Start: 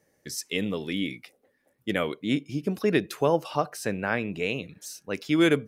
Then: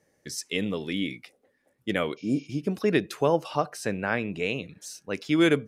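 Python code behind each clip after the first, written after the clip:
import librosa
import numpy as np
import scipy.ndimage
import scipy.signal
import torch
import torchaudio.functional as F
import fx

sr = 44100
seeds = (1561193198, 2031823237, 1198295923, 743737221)

y = fx.spec_repair(x, sr, seeds[0], start_s=2.2, length_s=0.24, low_hz=750.0, high_hz=6800.0, source='after')
y = scipy.signal.sosfilt(scipy.signal.butter(2, 11000.0, 'lowpass', fs=sr, output='sos'), y)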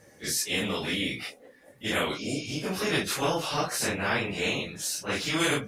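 y = fx.phase_scramble(x, sr, seeds[1], window_ms=100)
y = fx.spectral_comp(y, sr, ratio=2.0)
y = F.gain(torch.from_numpy(y), -4.5).numpy()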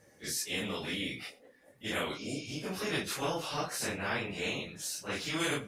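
y = x + 10.0 ** (-22.0 / 20.0) * np.pad(x, (int(92 * sr / 1000.0), 0))[:len(x)]
y = F.gain(torch.from_numpy(y), -6.5).numpy()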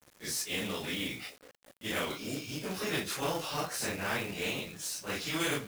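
y = fx.quant_companded(x, sr, bits=4)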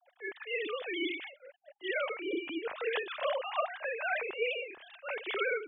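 y = fx.sine_speech(x, sr)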